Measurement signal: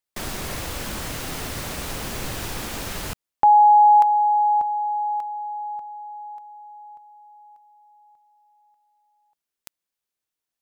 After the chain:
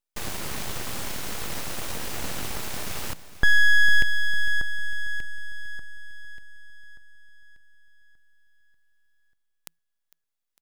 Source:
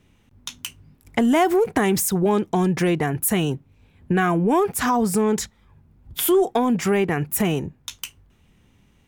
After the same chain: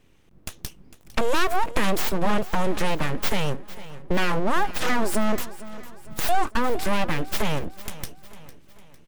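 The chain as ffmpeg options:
-filter_complex "[0:a]equalizer=f=82:t=o:w=0.21:g=8.5,aeval=exprs='abs(val(0))':c=same,asplit=2[s0][s1];[s1]aecho=0:1:453|906|1359|1812:0.15|0.0718|0.0345|0.0165[s2];[s0][s2]amix=inputs=2:normalize=0"

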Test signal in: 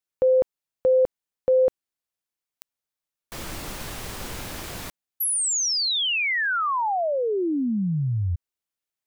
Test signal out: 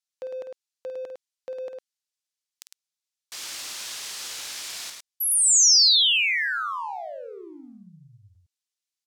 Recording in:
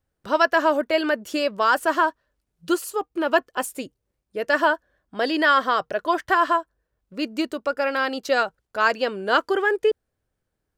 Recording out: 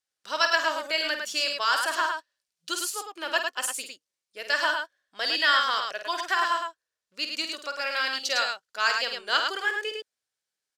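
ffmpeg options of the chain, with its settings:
-filter_complex "[0:a]bandpass=f=5500:t=q:w=0.97:csg=0,asplit=2[s0][s1];[s1]aeval=exprs='sgn(val(0))*max(abs(val(0))-0.00316,0)':c=same,volume=0.447[s2];[s0][s2]amix=inputs=2:normalize=0,aecho=1:1:49.56|105:0.398|0.562,volume=1.5"

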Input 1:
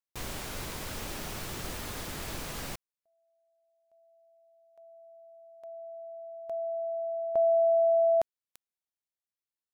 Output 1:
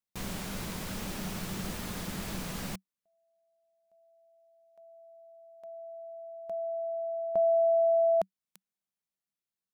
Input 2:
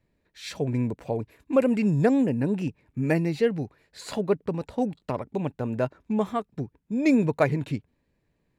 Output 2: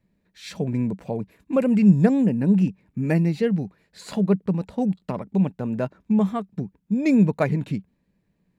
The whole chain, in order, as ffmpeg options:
-af "equalizer=f=190:w=3.7:g=14.5,volume=0.891"

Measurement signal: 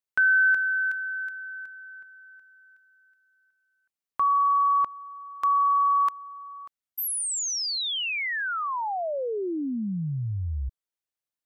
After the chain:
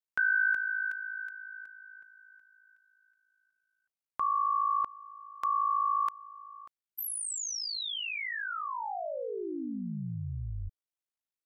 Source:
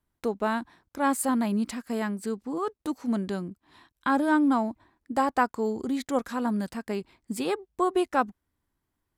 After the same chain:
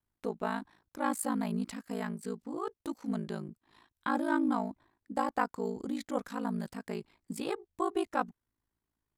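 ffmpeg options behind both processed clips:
-af "aeval=exprs='val(0)*sin(2*PI*27*n/s)':c=same,volume=0.631"

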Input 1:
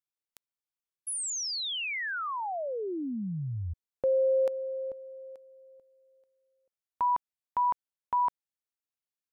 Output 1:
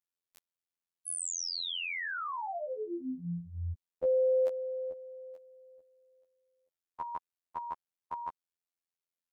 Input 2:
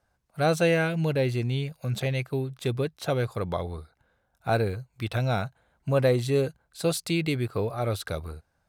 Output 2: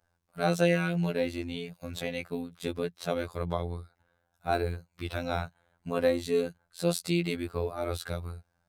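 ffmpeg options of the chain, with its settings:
-af "afftfilt=real='hypot(re,im)*cos(PI*b)':imag='0':win_size=2048:overlap=0.75"

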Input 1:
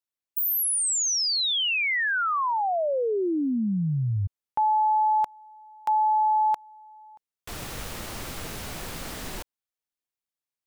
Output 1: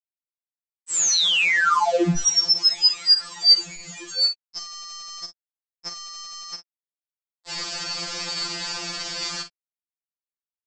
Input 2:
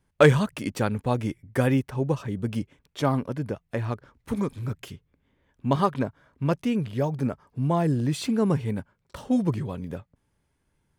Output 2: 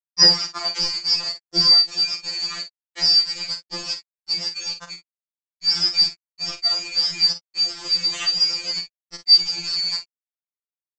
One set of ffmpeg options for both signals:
-filter_complex "[0:a]afftfilt=real='real(if(lt(b,272),68*(eq(floor(b/68),0)*1+eq(floor(b/68),1)*2+eq(floor(b/68),2)*3+eq(floor(b/68),3)*0)+mod(b,68),b),0)':imag='imag(if(lt(b,272),68*(eq(floor(b/68),0)*1+eq(floor(b/68),1)*2+eq(floor(b/68),2)*3+eq(floor(b/68),3)*0)+mod(b,68),b),0)':win_size=2048:overlap=0.75,bandreject=f=139.5:t=h:w=4,bandreject=f=279:t=h:w=4,bandreject=f=418.5:t=h:w=4,bandreject=f=558:t=h:w=4,bandreject=f=697.5:t=h:w=4,bandreject=f=837:t=h:w=4,bandreject=f=976.5:t=h:w=4,bandreject=f=1116:t=h:w=4,bandreject=f=1255.5:t=h:w=4,bandreject=f=1395:t=h:w=4,bandreject=f=1534.5:t=h:w=4,bandreject=f=1674:t=h:w=4,bandreject=f=1813.5:t=h:w=4,bandreject=f=1953:t=h:w=4,bandreject=f=2092.5:t=h:w=4,anlmdn=2.51,agate=range=0.00355:threshold=0.00282:ratio=3:release=129:detection=peak,adynamicequalizer=threshold=0.00178:dfrequency=1300:dqfactor=4.4:tfrequency=1300:tqfactor=4.4:attack=5:release=100:ratio=0.417:range=1.5:mode=boostabove:tftype=bell,asplit=2[s0][s1];[s1]acompressor=threshold=0.02:ratio=8:attack=3.5:release=36:knee=1:detection=rms,volume=1.19[s2];[s0][s2]amix=inputs=2:normalize=0,aresample=16000,aeval=exprs='val(0)*gte(abs(val(0)),0.0335)':c=same,aresample=44100,asplit=2[s3][s4];[s4]adelay=46,volume=0.335[s5];[s3][s5]amix=inputs=2:normalize=0,afftfilt=real='re*2.83*eq(mod(b,8),0)':imag='im*2.83*eq(mod(b,8),0)':win_size=2048:overlap=0.75,volume=1.68"

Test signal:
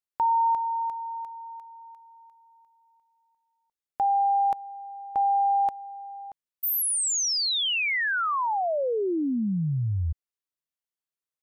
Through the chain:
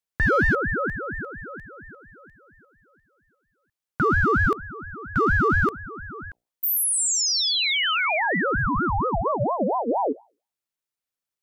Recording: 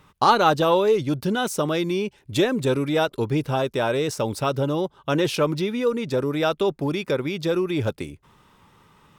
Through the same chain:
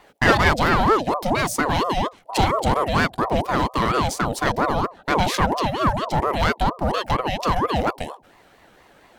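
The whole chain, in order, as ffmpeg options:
-af "bandreject=f=60:t=h:w=6,bandreject=f=120:t=h:w=6,bandreject=f=180:t=h:w=6,bandreject=f=240:t=h:w=6,bandreject=f=300:t=h:w=6,bandreject=f=360:t=h:w=6,aeval=exprs='clip(val(0),-1,0.1)':c=same,aeval=exprs='val(0)*sin(2*PI*620*n/s+620*0.45/4.3*sin(2*PI*4.3*n/s))':c=same,volume=2"

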